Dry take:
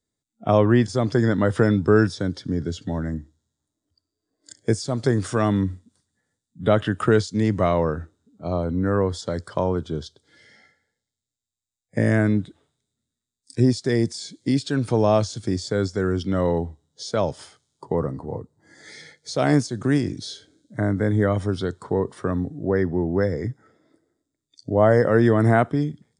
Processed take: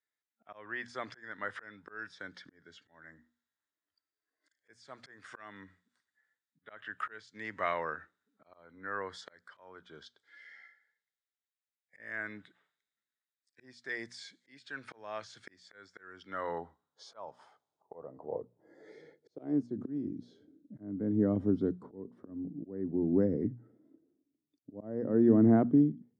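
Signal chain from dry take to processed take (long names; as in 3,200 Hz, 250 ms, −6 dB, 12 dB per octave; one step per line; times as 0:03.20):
mains-hum notches 60/120/180/240 Hz
volume swells 607 ms
band-pass filter sweep 1,800 Hz → 260 Hz, 0:16.07–0:19.90
level +2 dB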